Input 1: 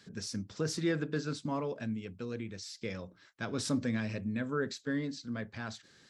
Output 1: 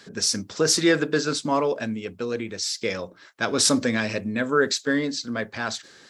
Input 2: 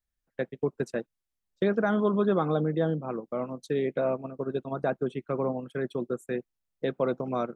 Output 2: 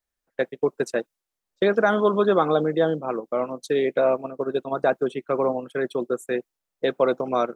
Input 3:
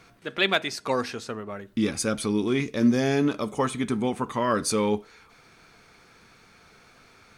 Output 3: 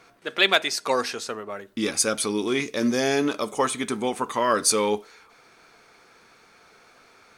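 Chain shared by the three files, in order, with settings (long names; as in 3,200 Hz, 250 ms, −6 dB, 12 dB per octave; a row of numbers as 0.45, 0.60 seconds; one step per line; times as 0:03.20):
bass and treble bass −13 dB, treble +5 dB
one half of a high-frequency compander decoder only
loudness normalisation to −24 LKFS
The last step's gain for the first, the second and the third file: +15.0, +8.5, +3.5 decibels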